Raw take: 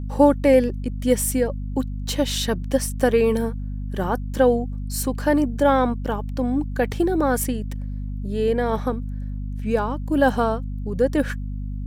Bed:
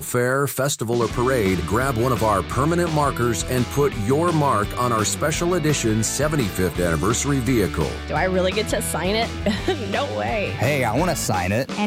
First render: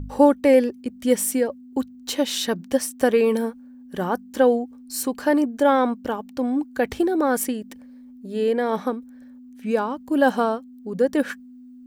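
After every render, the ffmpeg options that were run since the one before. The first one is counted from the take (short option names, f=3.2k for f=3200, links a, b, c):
-af "bandreject=f=50:t=h:w=4,bandreject=f=100:t=h:w=4,bandreject=f=150:t=h:w=4,bandreject=f=200:t=h:w=4"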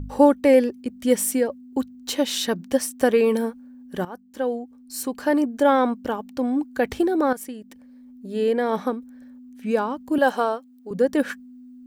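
-filter_complex "[0:a]asettb=1/sr,asplit=3[a][b][c];[a]atrim=end=10.184[d];[b]atrim=start=10.18:end=10.91,asetpts=PTS-STARTPTS,afade=t=in:d=0.004:c=qsin,afade=t=out:st=0.726:d=0.004:c=qsin,highpass=360[e];[c]atrim=start=10.906[f];[d][e]acrossfade=d=0.004:c1=hsin:c2=qsin[g];[g][f]acrossfade=d=0.004:c1=qsin:c2=hsin,asplit=3[h][i][j];[h]atrim=end=4.05,asetpts=PTS-STARTPTS,afade=t=out:st=4.046:d=0.004:c=hsin:silence=0.16788[k];[i]atrim=start=4.05:end=7.33,asetpts=PTS-STARTPTS,afade=t=in:d=1.51:silence=0.16788,afade=t=out:st=3.276:d=0.004:c=hsin:silence=0.211349[l];[j]atrim=start=7.33,asetpts=PTS-STARTPTS,afade=t=in:d=0.96:silence=0.211349[m];[k][l][m]concat=n=3:v=0:a=1"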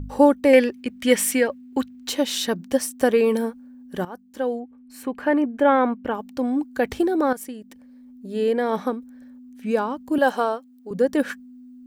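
-filter_complex "[0:a]asettb=1/sr,asplit=3[a][b][c];[a]atrim=end=0.534[d];[b]atrim=start=0.53:end=2.09,asetpts=PTS-STARTPTS,afade=t=in:d=0.004:c=qsin,afade=t=out:st=1.556:d=0.004:c=qsin,equalizer=f=2.2k:t=o:w=1.9:g=11.5[e];[c]atrim=start=2.086[f];[d][e]acrossfade=d=0.004:c1=hsin:c2=qsin[g];[g][f]acrossfade=d=0.004:c1=qsin:c2=hsin,asplit=3[h][i][j];[h]afade=t=out:st=4.59:d=0.02[k];[i]highshelf=f=3.5k:t=q:w=1.5:g=-11.5,afade=t=in:st=4.59:d=0.02,afade=t=out:st=6.13:d=0.02[l];[j]afade=t=in:st=6.13:d=0.02[m];[k][l][m]amix=inputs=3:normalize=0"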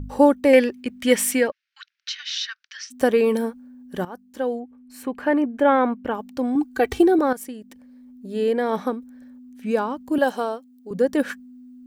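-filter_complex "[0:a]asplit=3[a][b][c];[a]afade=t=out:st=1.5:d=0.02[d];[b]asuperpass=centerf=2900:order=12:qfactor=0.63,afade=t=in:st=1.5:d=0.02,afade=t=out:st=2.9:d=0.02[e];[c]afade=t=in:st=2.9:d=0.02[f];[d][e][f]amix=inputs=3:normalize=0,asettb=1/sr,asplit=3[g][h][i];[g]atrim=end=6.554[j];[h]atrim=start=6.55:end=7.19,asetpts=PTS-STARTPTS,afade=t=in:d=0.004:c=qsin,afade=t=out:st=0.636:d=0.004:c=qsin,aecho=1:1:2.6:0.97,atrim=end_sample=28224[k];[i]atrim=start=7.186[l];[j][k]acrossfade=d=0.004:c1=hsin:c2=qsin[m];[m][l]acrossfade=d=0.004:c1=qsin:c2=hsin,asettb=1/sr,asplit=3[n][o][p];[n]atrim=end=10.244[q];[o]atrim=start=10.24:end=10.9,asetpts=PTS-STARTPTS,afade=t=in:d=0.004:c=qsin,afade=t=out:st=0.656:d=0.004:c=qsin,equalizer=f=1.3k:t=o:w=2.1:g=-5.5[r];[p]atrim=start=10.896[s];[q][r]acrossfade=d=0.004:c1=hsin:c2=qsin[t];[t][s]acrossfade=d=0.004:c1=qsin:c2=hsin"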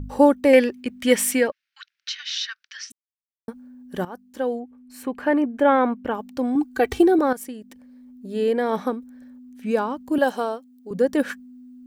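-filter_complex "[0:a]asplit=3[a][b][c];[a]atrim=end=2.92,asetpts=PTS-STARTPTS,afade=t=out:st=2.916:d=0.004:c=hsin[d];[b]atrim=start=2.92:end=3.48,asetpts=PTS-STARTPTS,volume=0[e];[c]atrim=start=3.48,asetpts=PTS-STARTPTS,afade=t=in:d=0.004:c=hsin[f];[d][e][f]concat=n=3:v=0:a=1"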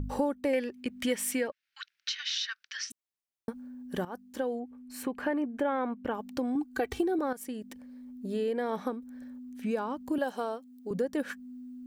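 -af "acompressor=threshold=-31dB:ratio=3"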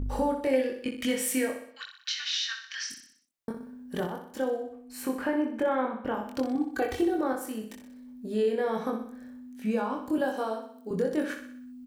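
-filter_complex "[0:a]asplit=2[a][b];[b]adelay=23,volume=-2.5dB[c];[a][c]amix=inputs=2:normalize=0,asplit=2[d][e];[e]aecho=0:1:62|124|186|248|310|372:0.398|0.199|0.0995|0.0498|0.0249|0.0124[f];[d][f]amix=inputs=2:normalize=0"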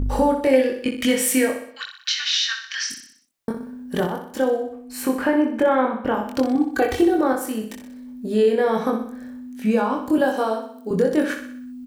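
-af "volume=9dB"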